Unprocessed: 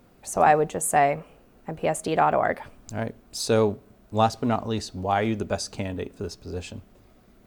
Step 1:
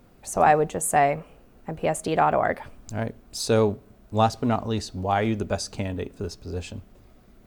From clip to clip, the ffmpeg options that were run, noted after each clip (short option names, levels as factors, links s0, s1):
-af "lowshelf=f=90:g=6"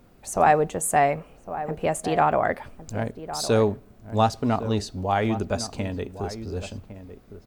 -filter_complex "[0:a]asplit=2[s0][s1];[s1]adelay=1108,volume=0.251,highshelf=f=4000:g=-24.9[s2];[s0][s2]amix=inputs=2:normalize=0"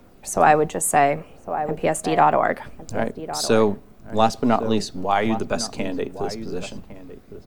-filter_complex "[0:a]aphaser=in_gain=1:out_gain=1:delay=1.1:decay=0.21:speed=0.66:type=triangular,acrossover=split=140|650|5300[s0][s1][s2][s3];[s0]aeval=exprs='abs(val(0))':c=same[s4];[s4][s1][s2][s3]amix=inputs=4:normalize=0,volume=1.58"